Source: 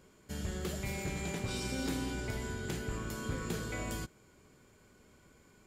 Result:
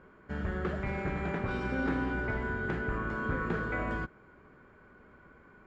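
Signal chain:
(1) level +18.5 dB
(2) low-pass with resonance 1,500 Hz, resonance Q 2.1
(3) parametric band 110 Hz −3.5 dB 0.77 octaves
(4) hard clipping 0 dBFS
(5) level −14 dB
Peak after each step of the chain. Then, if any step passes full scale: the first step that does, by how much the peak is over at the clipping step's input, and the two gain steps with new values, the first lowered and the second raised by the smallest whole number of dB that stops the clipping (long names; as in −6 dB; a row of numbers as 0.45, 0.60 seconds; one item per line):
−6.0, −5.5, −6.0, −6.0, −20.0 dBFS
no step passes full scale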